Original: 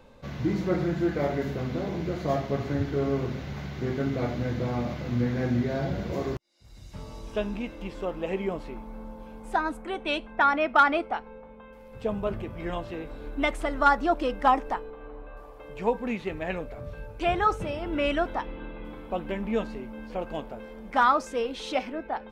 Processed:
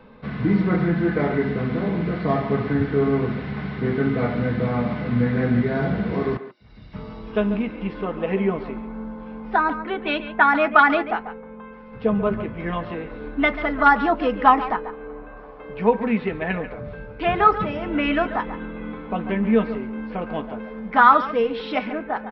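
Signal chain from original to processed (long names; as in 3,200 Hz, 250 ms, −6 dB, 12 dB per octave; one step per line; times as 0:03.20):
far-end echo of a speakerphone 140 ms, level −11 dB
convolution reverb RT60 0.10 s, pre-delay 3 ms, DRR 7 dB
downsampling to 11,025 Hz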